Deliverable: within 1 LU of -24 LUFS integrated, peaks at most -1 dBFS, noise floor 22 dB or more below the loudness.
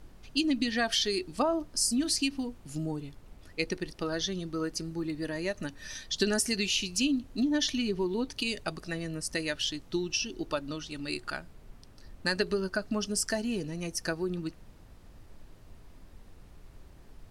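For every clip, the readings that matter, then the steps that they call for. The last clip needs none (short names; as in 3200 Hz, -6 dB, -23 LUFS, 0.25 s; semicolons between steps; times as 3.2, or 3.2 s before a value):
noise floor -53 dBFS; noise floor target -54 dBFS; loudness -31.5 LUFS; peak -13.5 dBFS; loudness target -24.0 LUFS
-> noise print and reduce 6 dB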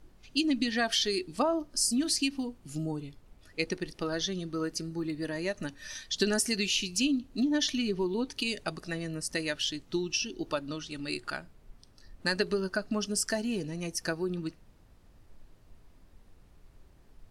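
noise floor -59 dBFS; loudness -31.5 LUFS; peak -13.5 dBFS; loudness target -24.0 LUFS
-> gain +7.5 dB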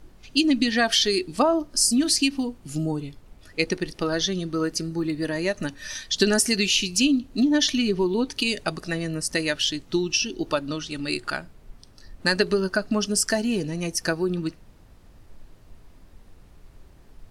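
loudness -24.0 LUFS; peak -6.0 dBFS; noise floor -51 dBFS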